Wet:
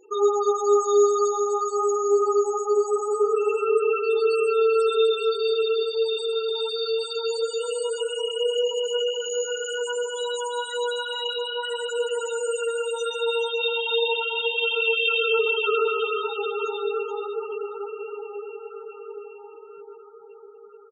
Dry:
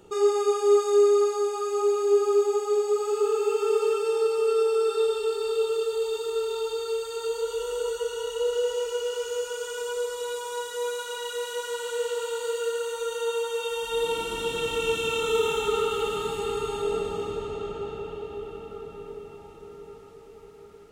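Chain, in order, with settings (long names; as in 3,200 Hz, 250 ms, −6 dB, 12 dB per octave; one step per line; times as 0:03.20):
spectral tilt +3.5 dB per octave
spectral peaks only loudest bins 8
on a send: single-tap delay 428 ms −9.5 dB
on the sum: level +5.5 dB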